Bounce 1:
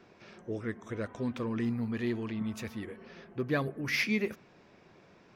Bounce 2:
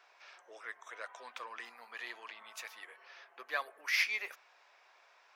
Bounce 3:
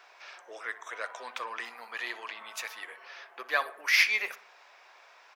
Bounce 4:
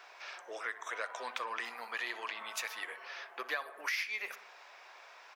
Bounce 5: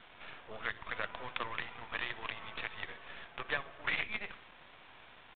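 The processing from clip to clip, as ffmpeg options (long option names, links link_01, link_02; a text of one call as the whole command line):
ffmpeg -i in.wav -af "highpass=frequency=750:width=0.5412,highpass=frequency=750:width=1.3066" out.wav
ffmpeg -i in.wav -filter_complex "[0:a]asplit=2[link_01][link_02];[link_02]adelay=61,lowpass=frequency=2400:poles=1,volume=-15dB,asplit=2[link_03][link_04];[link_04]adelay=61,lowpass=frequency=2400:poles=1,volume=0.51,asplit=2[link_05][link_06];[link_06]adelay=61,lowpass=frequency=2400:poles=1,volume=0.51,asplit=2[link_07][link_08];[link_08]adelay=61,lowpass=frequency=2400:poles=1,volume=0.51,asplit=2[link_09][link_10];[link_10]adelay=61,lowpass=frequency=2400:poles=1,volume=0.51[link_11];[link_01][link_03][link_05][link_07][link_09][link_11]amix=inputs=6:normalize=0,volume=8dB" out.wav
ffmpeg -i in.wav -af "acompressor=threshold=-35dB:ratio=8,volume=1.5dB" out.wav
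ffmpeg -i in.wav -af "aresample=16000,acrusher=bits=6:dc=4:mix=0:aa=0.000001,aresample=44100,aresample=8000,aresample=44100,volume=1.5dB" out.wav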